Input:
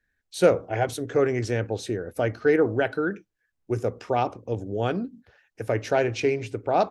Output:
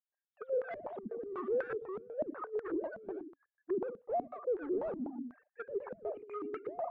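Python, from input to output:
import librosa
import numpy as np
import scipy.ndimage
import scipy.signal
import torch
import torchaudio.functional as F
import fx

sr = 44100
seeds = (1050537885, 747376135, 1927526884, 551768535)

y = fx.sine_speech(x, sr)
y = fx.over_compress(y, sr, threshold_db=-27.0, ratio=-0.5)
y = np.clip(10.0 ** (33.0 / 20.0) * y, -1.0, 1.0) / 10.0 ** (33.0 / 20.0)
y = y + 10.0 ** (-9.0 / 20.0) * np.pad(y, (int(115 * sr / 1000.0), 0))[:len(y)]
y = fx.filter_held_lowpass(y, sr, hz=8.1, low_hz=210.0, high_hz=1600.0)
y = y * 10.0 ** (-7.5 / 20.0)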